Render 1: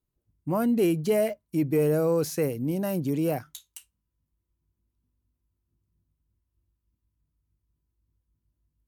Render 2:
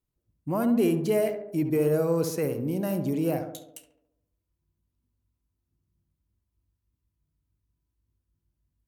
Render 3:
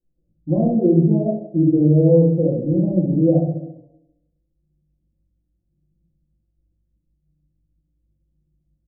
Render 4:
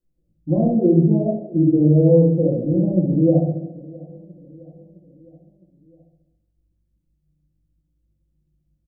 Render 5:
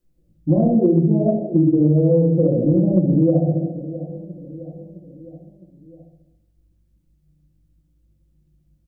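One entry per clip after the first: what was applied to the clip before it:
tape echo 69 ms, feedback 67%, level -5.5 dB, low-pass 1300 Hz; gain -1.5 dB
steep low-pass 680 Hz 48 dB/oct; comb 5.8 ms, depth 85%; shoebox room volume 340 m³, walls furnished, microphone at 2.2 m; gain +2 dB
feedback echo 0.661 s, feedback 57%, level -22.5 dB
compressor 6:1, threshold -20 dBFS, peak gain reduction 10.5 dB; gain +7.5 dB

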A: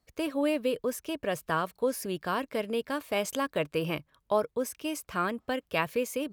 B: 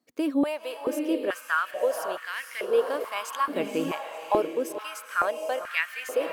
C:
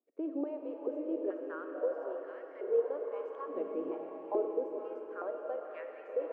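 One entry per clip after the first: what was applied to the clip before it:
diffused feedback echo 0.508 s, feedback 42%, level -5.5 dB; stepped high-pass 2.3 Hz 260–1900 Hz; gain -2.5 dB
ladder band-pass 460 Hz, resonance 50%; reverb RT60 4.8 s, pre-delay 10 ms, DRR 4 dB

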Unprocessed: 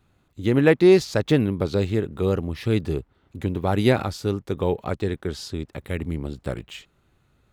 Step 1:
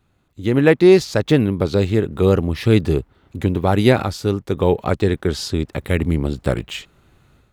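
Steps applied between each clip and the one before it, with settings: AGC gain up to 10.5 dB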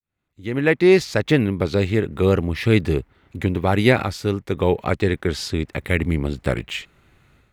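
opening faded in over 0.98 s; bell 2100 Hz +7.5 dB 0.79 oct; gain -2.5 dB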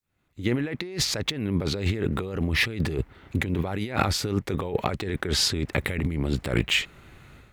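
negative-ratio compressor -27 dBFS, ratio -1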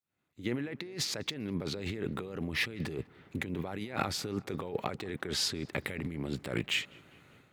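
HPF 130 Hz 12 dB/oct; darkening echo 0.199 s, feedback 70%, low-pass 2800 Hz, level -24 dB; gain -8 dB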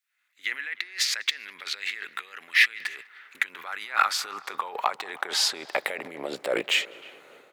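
high-pass sweep 1800 Hz -> 490 Hz, 2.93–6.82; speakerphone echo 0.31 s, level -22 dB; gain +7.5 dB

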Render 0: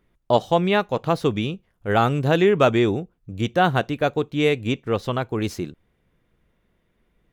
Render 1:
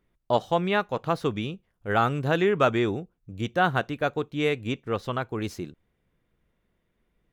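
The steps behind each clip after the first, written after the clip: dynamic EQ 1400 Hz, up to +5 dB, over -35 dBFS, Q 1.3; gain -6 dB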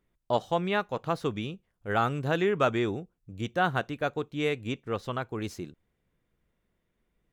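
bell 7500 Hz +2.5 dB; gain -3.5 dB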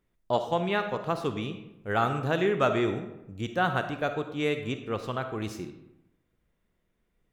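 digital reverb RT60 0.92 s, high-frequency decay 0.6×, pre-delay 10 ms, DRR 7.5 dB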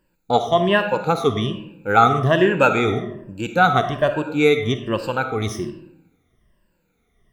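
moving spectral ripple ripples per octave 1.3, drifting -1.2 Hz, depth 17 dB; gain +7 dB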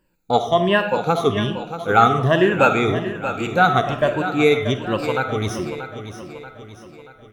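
feedback echo 0.633 s, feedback 48%, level -11 dB

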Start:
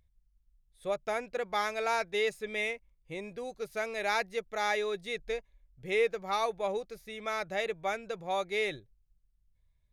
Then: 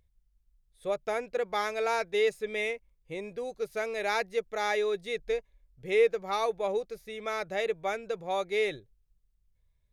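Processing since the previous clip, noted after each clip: bell 450 Hz +5 dB 0.57 oct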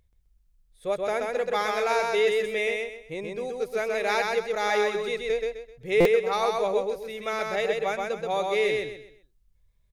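on a send: feedback echo 0.129 s, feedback 31%, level -3 dB; on the sum: stuck buffer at 6, samples 256, times 8; gain +3 dB

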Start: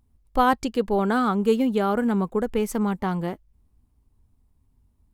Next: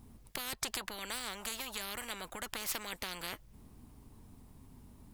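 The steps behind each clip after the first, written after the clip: compressor, threshold -25 dBFS, peak gain reduction 10.5 dB; spectral compressor 10:1; gain -1.5 dB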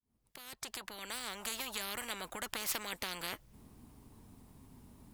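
opening faded in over 1.59 s; low shelf 67 Hz -8 dB; gain +1 dB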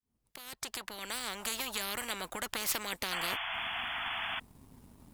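sample leveller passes 1; painted sound noise, 3.11–4.4, 640–3500 Hz -37 dBFS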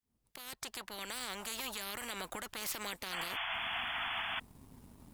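limiter -28 dBFS, peak gain reduction 11 dB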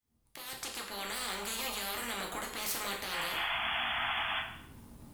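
plate-style reverb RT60 0.7 s, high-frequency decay 0.9×, DRR -0.5 dB; gain +1 dB

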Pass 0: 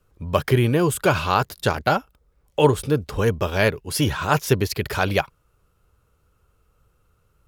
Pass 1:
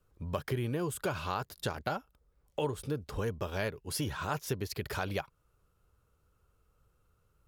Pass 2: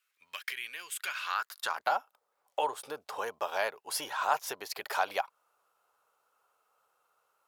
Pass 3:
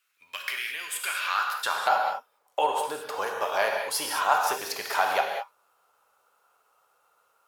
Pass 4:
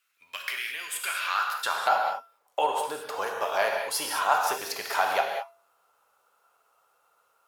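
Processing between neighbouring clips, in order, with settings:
bell 2500 Hz -2 dB; compressor 2.5:1, threshold -26 dBFS, peak gain reduction 11 dB; gain -7.5 dB
high-pass sweep 2200 Hz -> 780 Hz, 1–1.98; gain +2.5 dB
non-linear reverb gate 0.24 s flat, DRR 1 dB; gain +4.5 dB
resonator 680 Hz, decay 0.43 s, mix 60%; gain +7 dB

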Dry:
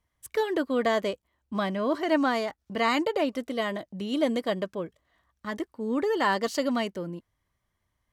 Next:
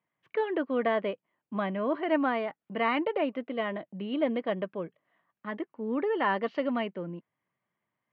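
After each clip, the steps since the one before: elliptic band-pass 150–2700 Hz, stop band 50 dB; gain -2 dB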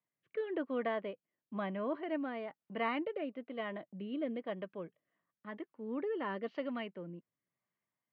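rotary speaker horn 1 Hz; gain -6.5 dB

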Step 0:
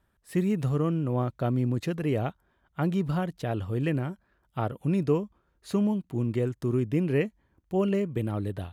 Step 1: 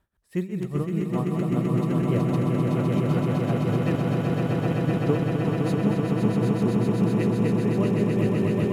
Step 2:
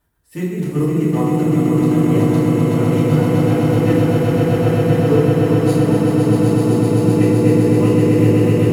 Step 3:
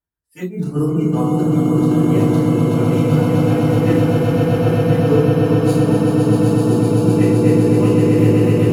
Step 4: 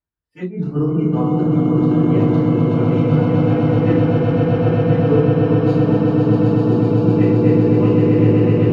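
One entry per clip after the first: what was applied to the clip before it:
regenerating reverse delay 0.253 s, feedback 78%, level -6 dB; tremolo 5.1 Hz, depth 87%; swelling echo 0.128 s, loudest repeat 8, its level -5 dB
high shelf 7100 Hz +10.5 dB; FDN reverb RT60 1.4 s, low-frequency decay 1.05×, high-frequency decay 0.55×, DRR -8.5 dB; gain -1 dB
spectral noise reduction 22 dB
air absorption 240 m

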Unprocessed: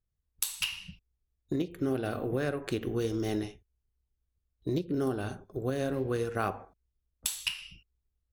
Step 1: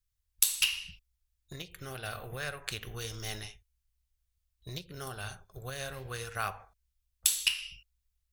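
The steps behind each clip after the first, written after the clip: passive tone stack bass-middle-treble 10-0-10; gain +7 dB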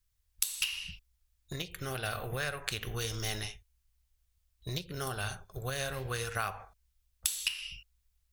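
compressor 4:1, threshold -35 dBFS, peak gain reduction 14 dB; gain +5 dB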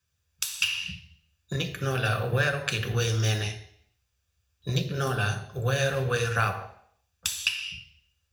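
reverb RT60 0.65 s, pre-delay 3 ms, DRR 4.5 dB

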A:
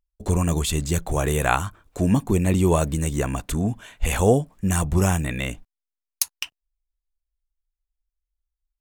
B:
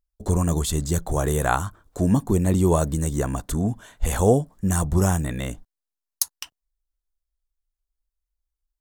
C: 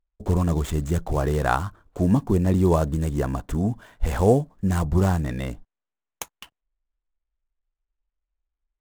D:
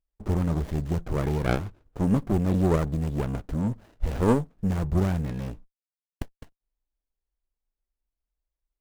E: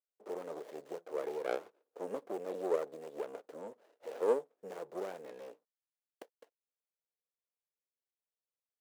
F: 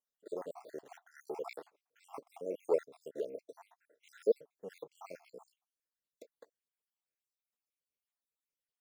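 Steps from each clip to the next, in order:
bell 2500 Hz -11.5 dB 0.65 oct
median filter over 9 samples
running maximum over 33 samples; gain -2.5 dB
ladder high-pass 420 Hz, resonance 60%; gain -2 dB
random spectral dropouts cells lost 70%; gain +2.5 dB

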